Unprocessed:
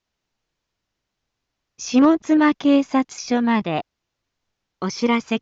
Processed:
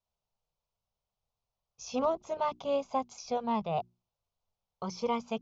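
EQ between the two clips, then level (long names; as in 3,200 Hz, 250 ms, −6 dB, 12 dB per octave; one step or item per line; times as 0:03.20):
high-shelf EQ 3,000 Hz −9 dB
mains-hum notches 60/120/180/240/300/360 Hz
phaser with its sweep stopped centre 730 Hz, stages 4
−5.5 dB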